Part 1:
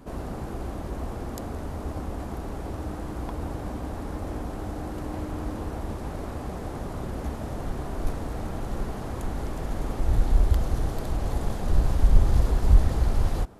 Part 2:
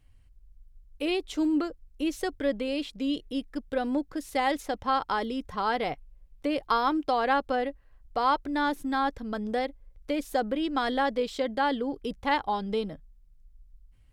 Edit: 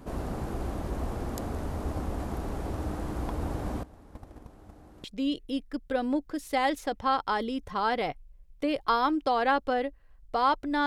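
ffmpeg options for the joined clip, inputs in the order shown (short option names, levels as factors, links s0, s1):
-filter_complex "[0:a]asettb=1/sr,asplit=3[s0][s1][s2];[s0]atrim=end=3.834[s3];[s1]atrim=start=3.83:end=5.04,asetpts=PTS-STARTPTS,afade=t=in:d=0.004:c=qsin,afade=t=out:st=1.206:d=0.004:c=qsin,agate=range=0.112:threshold=0.0355:ratio=16:release=100:detection=peak[s4];[s2]atrim=start=5.036[s5];[s3][s4]acrossfade=d=0.004:c1=hsin:c2=qsin[s6];[s6][s5]acrossfade=d=0.004:c1=qsin:c2=hsin,apad=whole_dur=10.86,atrim=end=10.86,atrim=end=5.042[s7];[1:a]atrim=start=2.858:end=8.68[s8];[s7][s8]acrossfade=d=0.004:c1=hsin:c2=hsin"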